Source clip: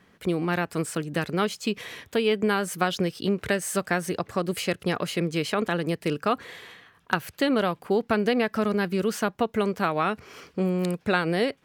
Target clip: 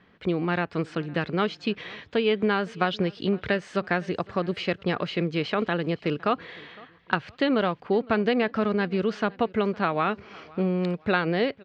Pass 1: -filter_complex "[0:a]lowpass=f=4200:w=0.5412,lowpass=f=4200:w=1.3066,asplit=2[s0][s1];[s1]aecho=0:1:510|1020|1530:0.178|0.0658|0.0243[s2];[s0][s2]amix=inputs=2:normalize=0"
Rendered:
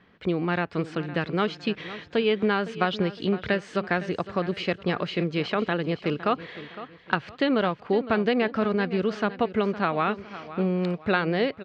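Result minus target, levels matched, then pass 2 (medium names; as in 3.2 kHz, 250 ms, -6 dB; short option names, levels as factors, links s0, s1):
echo-to-direct +9 dB
-filter_complex "[0:a]lowpass=f=4200:w=0.5412,lowpass=f=4200:w=1.3066,asplit=2[s0][s1];[s1]aecho=0:1:510|1020:0.0631|0.0233[s2];[s0][s2]amix=inputs=2:normalize=0"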